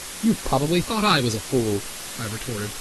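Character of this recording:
phaser sweep stages 2, 0.72 Hz, lowest notch 610–2,400 Hz
a quantiser's noise floor 6 bits, dither triangular
AAC

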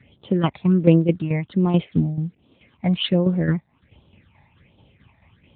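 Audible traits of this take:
tremolo saw down 4.6 Hz, depth 65%
a quantiser's noise floor 10 bits, dither none
phaser sweep stages 8, 1.3 Hz, lowest notch 390–1,900 Hz
AMR narrowband

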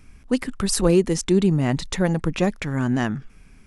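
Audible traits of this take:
background noise floor −49 dBFS
spectral slope −5.5 dB per octave

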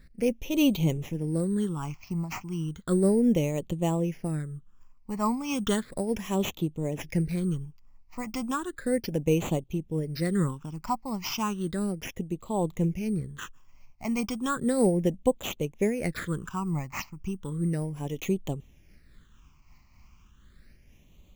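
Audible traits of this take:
aliases and images of a low sample rate 8,800 Hz, jitter 0%
phaser sweep stages 8, 0.34 Hz, lowest notch 460–1,600 Hz
amplitude modulation by smooth noise

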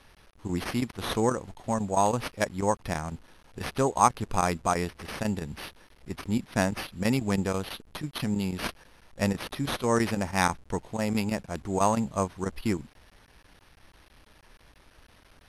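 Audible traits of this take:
aliases and images of a low sample rate 7,400 Hz, jitter 0%
chopped level 6.1 Hz, depth 65%, duty 90%
a quantiser's noise floor 10 bits, dither none
MP2

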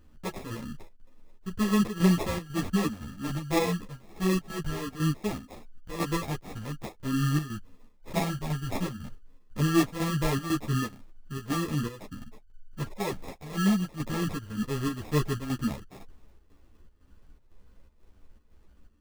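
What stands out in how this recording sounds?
phaser sweep stages 6, 0.21 Hz, lowest notch 480–1,400 Hz
chopped level 2 Hz, depth 60%, duty 75%
aliases and images of a low sample rate 1,500 Hz, jitter 0%
a shimmering, thickened sound

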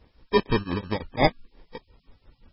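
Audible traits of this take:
aliases and images of a low sample rate 1,400 Hz, jitter 0%
tremolo triangle 5.8 Hz, depth 100%
a quantiser's noise floor 12 bits, dither triangular
MP3

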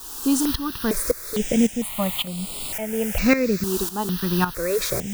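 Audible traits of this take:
a quantiser's noise floor 6 bits, dither triangular
tremolo saw up 1.8 Hz, depth 75%
notches that jump at a steady rate 2.2 Hz 580–6,000 Hz

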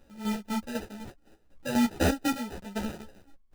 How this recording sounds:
chopped level 4 Hz, depth 65%, duty 40%
aliases and images of a low sample rate 1,100 Hz, jitter 0%
a shimmering, thickened sound

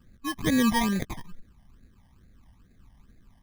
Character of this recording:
aliases and images of a low sample rate 1,400 Hz, jitter 0%
phaser sweep stages 12, 2.3 Hz, lowest notch 420–1,000 Hz

